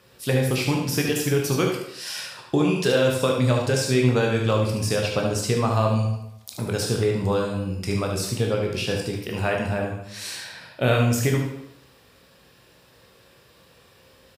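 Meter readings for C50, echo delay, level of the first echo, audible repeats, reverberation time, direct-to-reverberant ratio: 2.5 dB, 74 ms, -6.5 dB, 1, 0.80 s, -0.5 dB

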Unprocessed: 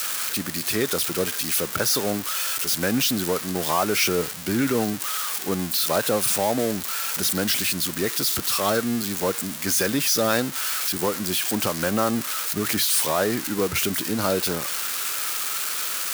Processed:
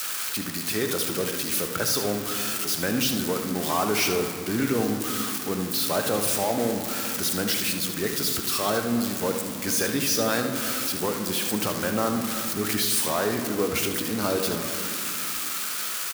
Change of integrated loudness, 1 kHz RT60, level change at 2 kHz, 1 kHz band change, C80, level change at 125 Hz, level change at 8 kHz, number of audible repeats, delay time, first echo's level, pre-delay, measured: -2.5 dB, 2.4 s, -2.0 dB, -2.0 dB, 9.0 dB, -1.5 dB, -2.5 dB, 1, 76 ms, -9.5 dB, 3 ms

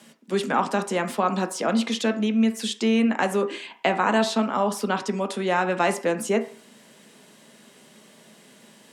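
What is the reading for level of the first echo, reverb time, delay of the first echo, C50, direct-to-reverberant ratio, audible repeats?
none, 0.50 s, none, 13.5 dB, 7.0 dB, none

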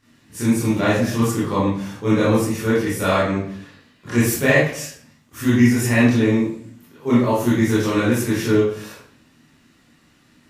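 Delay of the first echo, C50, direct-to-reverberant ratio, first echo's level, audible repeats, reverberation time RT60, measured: none, 0.0 dB, -10.0 dB, none, none, 0.60 s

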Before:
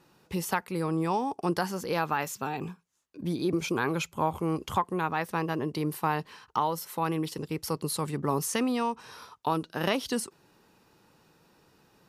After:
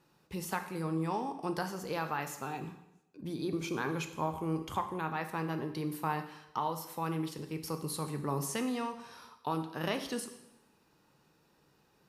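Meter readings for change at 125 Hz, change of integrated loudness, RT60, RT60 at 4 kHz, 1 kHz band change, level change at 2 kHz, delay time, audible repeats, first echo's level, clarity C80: -4.5 dB, -6.0 dB, 0.85 s, 0.85 s, -6.0 dB, -6.0 dB, none, none, none, 12.5 dB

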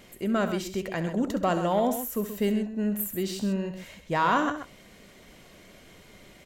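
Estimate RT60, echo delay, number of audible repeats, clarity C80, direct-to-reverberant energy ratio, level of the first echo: none, 67 ms, 2, none, none, -12.5 dB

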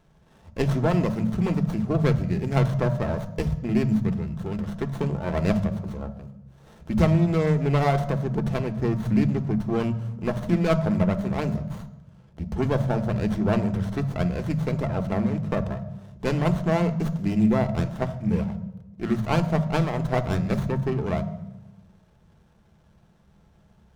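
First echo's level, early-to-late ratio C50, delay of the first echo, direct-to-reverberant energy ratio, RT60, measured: none, 13.0 dB, none, 7.0 dB, 0.95 s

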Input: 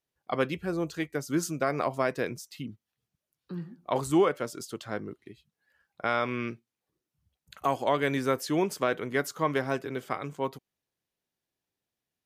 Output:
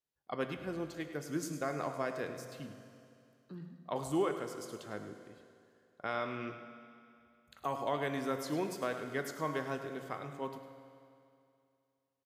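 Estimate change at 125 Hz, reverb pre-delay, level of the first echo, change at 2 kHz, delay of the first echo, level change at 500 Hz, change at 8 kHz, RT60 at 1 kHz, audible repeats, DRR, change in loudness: -8.0 dB, 17 ms, -12.0 dB, -8.5 dB, 0.104 s, -8.0 dB, -8.0 dB, 2.5 s, 1, 6.0 dB, -8.0 dB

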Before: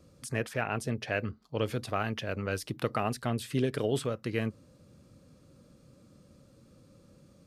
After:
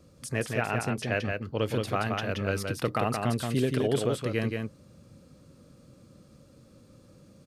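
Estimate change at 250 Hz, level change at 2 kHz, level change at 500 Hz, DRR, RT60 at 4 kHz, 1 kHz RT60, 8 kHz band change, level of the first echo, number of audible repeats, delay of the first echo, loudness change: +3.5 dB, +3.5 dB, +3.5 dB, none, none, none, +3.5 dB, -4.0 dB, 1, 0.175 s, +3.5 dB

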